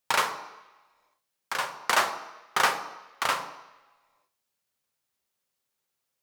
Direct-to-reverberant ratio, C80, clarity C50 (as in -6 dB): 6.5 dB, 12.5 dB, 10.5 dB